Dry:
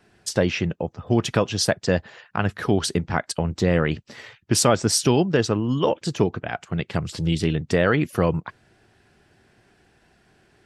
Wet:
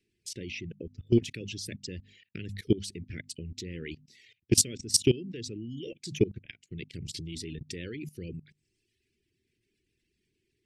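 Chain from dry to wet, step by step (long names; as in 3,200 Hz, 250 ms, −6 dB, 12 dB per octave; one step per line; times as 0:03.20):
reverb reduction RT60 0.99 s
Chebyshev band-stop filter 390–2,200 Hz, order 3
parametric band 170 Hz −3.5 dB 0.78 octaves
mains-hum notches 50/100/150/200/250 Hz
output level in coarse steps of 20 dB
level +1.5 dB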